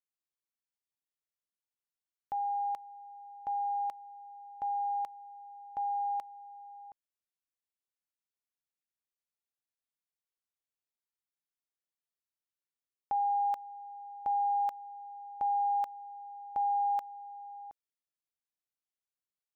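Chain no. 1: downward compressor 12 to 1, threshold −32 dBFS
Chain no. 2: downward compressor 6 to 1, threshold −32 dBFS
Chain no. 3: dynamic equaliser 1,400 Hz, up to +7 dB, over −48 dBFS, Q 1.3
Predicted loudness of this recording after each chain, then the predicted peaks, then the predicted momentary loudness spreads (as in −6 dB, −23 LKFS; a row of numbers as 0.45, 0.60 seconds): −38.0, −37.5, −31.5 LKFS; −26.0, −26.0, −24.0 dBFS; 15, 15, 21 LU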